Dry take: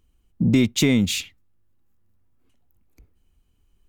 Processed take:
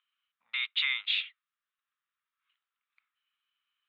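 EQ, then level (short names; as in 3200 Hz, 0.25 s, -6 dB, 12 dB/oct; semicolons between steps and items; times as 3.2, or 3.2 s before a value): elliptic high-pass 1200 Hz, stop band 70 dB; elliptic low-pass 3700 Hz, stop band 40 dB; 0.0 dB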